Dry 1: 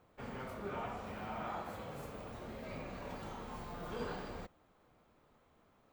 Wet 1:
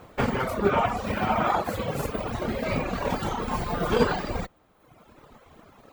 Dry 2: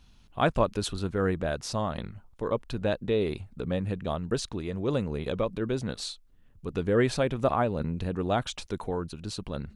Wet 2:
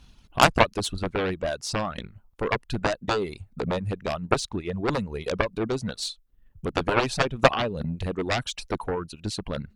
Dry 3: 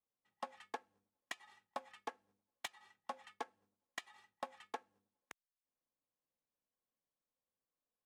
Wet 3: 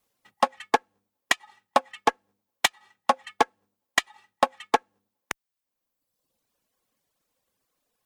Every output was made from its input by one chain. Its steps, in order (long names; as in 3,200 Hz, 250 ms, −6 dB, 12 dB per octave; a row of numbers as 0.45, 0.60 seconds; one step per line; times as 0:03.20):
transient designer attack +5 dB, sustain −1 dB
reverb reduction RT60 1.2 s
harmonic generator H 7 −10 dB, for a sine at −7 dBFS
loudness normalisation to −27 LKFS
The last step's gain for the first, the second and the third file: +18.0, +3.5, +17.5 decibels